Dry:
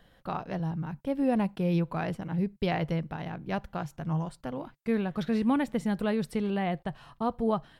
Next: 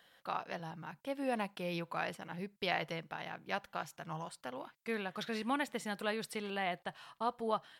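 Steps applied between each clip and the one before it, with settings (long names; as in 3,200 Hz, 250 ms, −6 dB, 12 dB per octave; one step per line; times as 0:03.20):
high-pass filter 1,400 Hz 6 dB per octave
level +2 dB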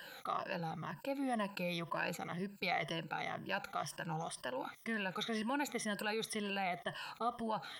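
rippled gain that drifts along the octave scale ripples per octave 1.3, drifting −2 Hz, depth 16 dB
envelope flattener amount 50%
level −7.5 dB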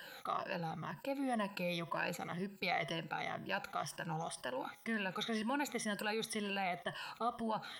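tuned comb filter 75 Hz, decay 0.63 s, harmonics odd, mix 40%
level +4 dB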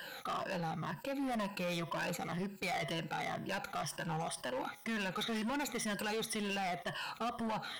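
hard clipping −38.5 dBFS, distortion −8 dB
level +4.5 dB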